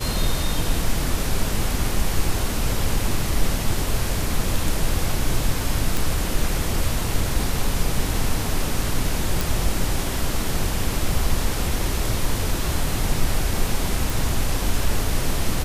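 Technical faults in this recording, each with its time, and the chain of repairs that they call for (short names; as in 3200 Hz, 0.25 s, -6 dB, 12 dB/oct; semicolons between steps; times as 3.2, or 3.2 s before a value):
5.97 pop
9.41 pop
14.1 pop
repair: de-click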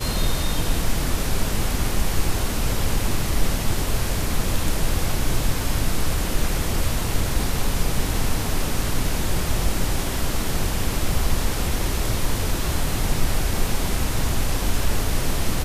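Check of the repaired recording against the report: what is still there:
none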